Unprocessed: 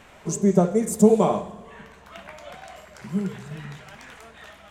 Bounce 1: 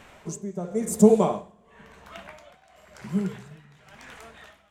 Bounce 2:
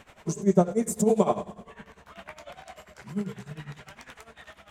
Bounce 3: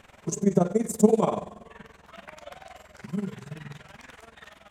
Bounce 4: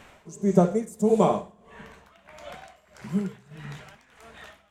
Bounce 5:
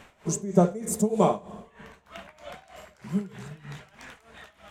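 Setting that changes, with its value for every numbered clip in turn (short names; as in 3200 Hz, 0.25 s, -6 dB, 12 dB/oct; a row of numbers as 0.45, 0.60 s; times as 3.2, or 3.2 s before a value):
tremolo, rate: 0.95, 10, 21, 1.6, 3.2 Hz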